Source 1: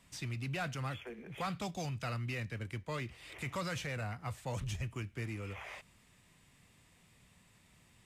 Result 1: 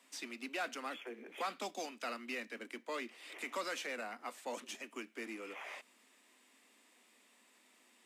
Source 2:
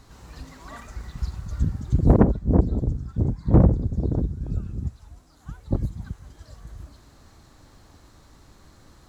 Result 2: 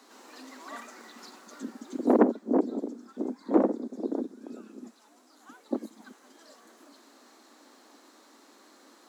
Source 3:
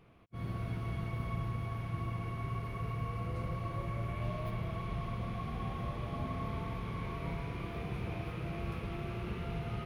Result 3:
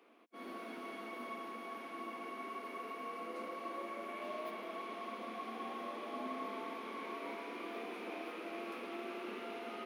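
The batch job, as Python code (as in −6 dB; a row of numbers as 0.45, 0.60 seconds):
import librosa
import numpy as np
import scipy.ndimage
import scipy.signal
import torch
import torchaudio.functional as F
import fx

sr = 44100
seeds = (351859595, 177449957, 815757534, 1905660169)

y = scipy.signal.sosfilt(scipy.signal.butter(12, 230.0, 'highpass', fs=sr, output='sos'), x)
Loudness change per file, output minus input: −3.0, −5.5, −5.5 LU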